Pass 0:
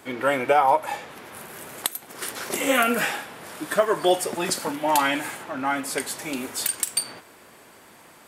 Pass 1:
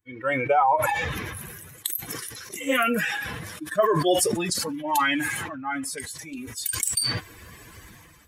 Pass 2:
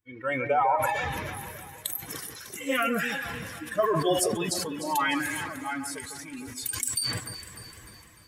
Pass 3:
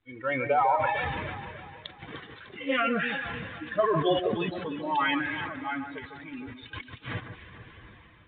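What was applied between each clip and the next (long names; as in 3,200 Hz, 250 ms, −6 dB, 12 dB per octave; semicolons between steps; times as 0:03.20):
spectral dynamics exaggerated over time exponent 2; level that may fall only so fast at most 27 dB per second
delay that swaps between a low-pass and a high-pass 150 ms, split 1,800 Hz, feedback 69%, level −8.5 dB; level −4 dB
mu-law 64 kbit/s 8,000 Hz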